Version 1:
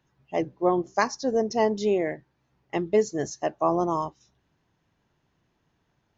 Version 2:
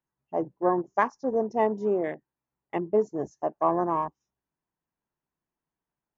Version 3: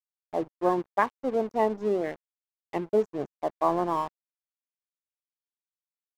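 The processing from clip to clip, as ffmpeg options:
-af "afwtdn=0.0158,equalizer=f=100:t=o:w=0.67:g=-10,equalizer=f=1000:t=o:w=0.67:g=4,equalizer=f=4000:t=o:w=0.67:g=-11,volume=0.794"
-af "aeval=exprs='sgn(val(0))*max(abs(val(0))-0.0075,0)':c=same"

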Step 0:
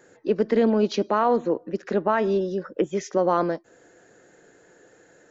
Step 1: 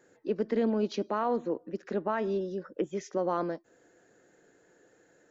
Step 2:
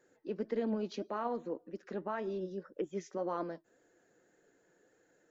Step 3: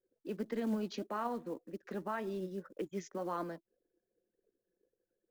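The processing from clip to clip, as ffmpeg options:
-af "equalizer=f=270:w=1.5:g=2.5,volume=0.355"
-af "flanger=delay=1.6:depth=4.9:regen=65:speed=1.8:shape=triangular,volume=0.75"
-filter_complex "[0:a]anlmdn=0.0001,acrossover=split=350|700[s0][s1][s2];[s1]acompressor=threshold=0.00316:ratio=12[s3];[s0][s3][s2]amix=inputs=3:normalize=0,acrusher=bits=7:mode=log:mix=0:aa=0.000001,volume=1.19"

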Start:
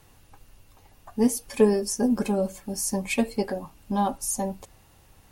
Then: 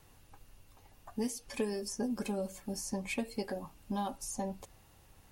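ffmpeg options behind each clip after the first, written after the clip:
-filter_complex "[0:a]acrossover=split=1900|7500[s0][s1][s2];[s0]acompressor=threshold=0.0398:ratio=4[s3];[s1]acompressor=threshold=0.0158:ratio=4[s4];[s2]acompressor=threshold=0.00501:ratio=4[s5];[s3][s4][s5]amix=inputs=3:normalize=0,volume=0.562"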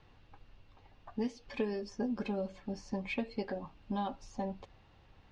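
-af "lowpass=f=4200:w=0.5412,lowpass=f=4200:w=1.3066"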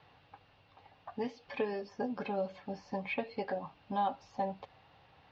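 -filter_complex "[0:a]acrossover=split=3100[s0][s1];[s1]acompressor=threshold=0.00112:ratio=4:attack=1:release=60[s2];[s0][s2]amix=inputs=2:normalize=0,highpass=140,equalizer=f=220:t=q:w=4:g=-10,equalizer=f=350:t=q:w=4:g=-8,equalizer=f=770:t=q:w=4:g=4,lowpass=f=5100:w=0.5412,lowpass=f=5100:w=1.3066,volume=1.5"

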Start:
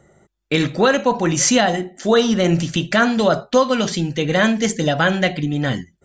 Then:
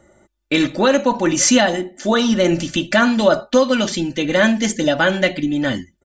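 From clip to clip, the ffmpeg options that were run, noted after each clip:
-af "aecho=1:1:3.4:0.6"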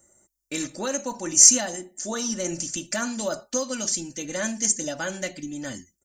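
-af "aexciter=amount=15.4:drive=2.6:freq=5300,volume=0.188"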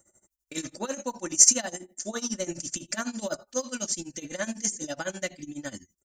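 -af "tremolo=f=12:d=0.9"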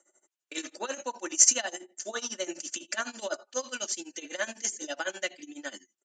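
-af "highpass=f=330:w=0.5412,highpass=f=330:w=1.3066,equalizer=f=520:t=q:w=4:g=-3,equalizer=f=1600:t=q:w=4:g=3,equalizer=f=2900:t=q:w=4:g=6,equalizer=f=5400:t=q:w=4:g=-4,lowpass=f=7200:w=0.5412,lowpass=f=7200:w=1.3066"

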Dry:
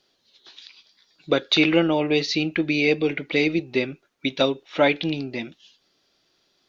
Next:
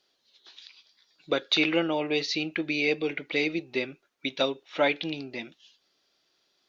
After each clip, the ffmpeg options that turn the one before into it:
-af "lowshelf=f=250:g=-9.5,volume=0.631"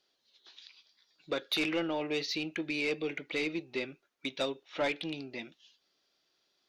-af "asoftclip=type=tanh:threshold=0.106,volume=0.596"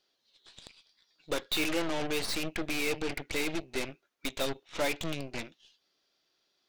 -af "aeval=exprs='0.0631*(cos(1*acos(clip(val(0)/0.0631,-1,1)))-cos(1*PI/2))+0.0158*(cos(8*acos(clip(val(0)/0.0631,-1,1)))-cos(8*PI/2))':c=same"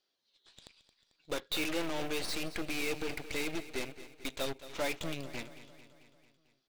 -filter_complex "[0:a]asplit=2[s0][s1];[s1]acrusher=bits=5:mix=0:aa=0.000001,volume=0.282[s2];[s0][s2]amix=inputs=2:normalize=0,aecho=1:1:222|444|666|888|1110|1332:0.188|0.111|0.0656|0.0387|0.0228|0.0135,volume=0.501"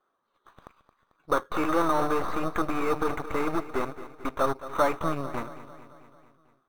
-filter_complex "[0:a]lowpass=f=1200:t=q:w=5.7,asplit=2[s0][s1];[s1]acrusher=samples=9:mix=1:aa=0.000001,volume=0.316[s2];[s0][s2]amix=inputs=2:normalize=0,volume=2"

